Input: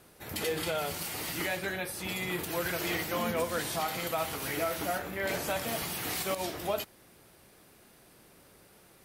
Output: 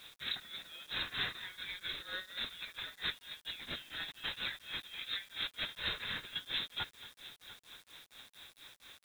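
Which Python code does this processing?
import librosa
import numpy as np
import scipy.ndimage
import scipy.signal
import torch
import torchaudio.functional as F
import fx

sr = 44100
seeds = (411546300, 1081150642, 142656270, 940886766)

y = fx.freq_invert(x, sr, carrier_hz=3900)
y = fx.over_compress(y, sr, threshold_db=-39.0, ratio=-0.5)
y = fx.dynamic_eq(y, sr, hz=760.0, q=1.3, threshold_db=-57.0, ratio=4.0, max_db=-8)
y = fx.echo_heads(y, sr, ms=232, heads='first and third', feedback_pct=46, wet_db=-18.5)
y = fx.tremolo_shape(y, sr, shape='triangle', hz=4.3, depth_pct=95)
y = fx.peak_eq(y, sr, hz=1600.0, db=5.0, octaves=0.34)
y = fx.quant_dither(y, sr, seeds[0], bits=10, dither='none')
y = fx.notch(y, sr, hz=3000.0, q=14.0)
y = F.gain(torch.from_numpy(y), 2.0).numpy()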